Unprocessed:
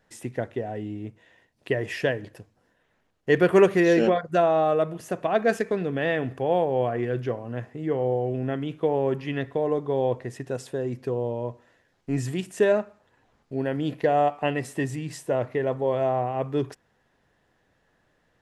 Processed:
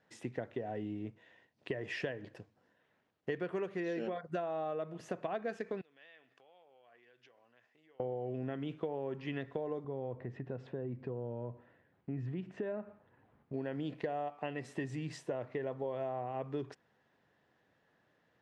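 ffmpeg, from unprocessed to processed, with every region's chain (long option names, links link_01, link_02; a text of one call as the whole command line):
ffmpeg -i in.wav -filter_complex "[0:a]asettb=1/sr,asplit=3[link_01][link_02][link_03];[link_01]atrim=end=5.814[link_04];[link_02]atrim=start=5.81:end=8,asetpts=PTS-STARTPTS,afade=type=in:duration=0.004:curve=qsin,afade=type=out:start_time=2.186:duration=0.004:curve=qsin,lowpass=5400,acompressor=threshold=-32dB:ratio=12:attack=3.2:release=140:knee=1:detection=peak,aderivative[link_05];[link_03]atrim=start=7.996[link_06];[link_04][link_05]acrossfade=duration=0.004:curve1=hsin:curve2=qsin[link_07];[link_07][link_06]acrossfade=duration=0.004:curve1=qsin:curve2=hsin,asettb=1/sr,asplit=3[link_08][link_09][link_10];[link_08]atrim=end=9.844[link_11];[link_09]atrim=start=9.84:end=13.54,asetpts=PTS-STARTPTS,afade=type=in:duration=0.004:curve=qsin,afade=type=out:start_time=3.696:duration=0.004:curve=qsin,lowshelf=frequency=220:gain=10.5,acompressor=threshold=-36dB:ratio=2:attack=3.2:release=140:knee=1:detection=peak,lowpass=2300[link_12];[link_10]atrim=start=13.536[link_13];[link_11][link_12]acrossfade=duration=0.004:curve1=hsin:curve2=qsin[link_14];[link_14][link_13]acrossfade=duration=0.004:curve1=qsin:curve2=hsin,highpass=110,acompressor=threshold=-29dB:ratio=10,lowpass=5000,volume=-5dB" out.wav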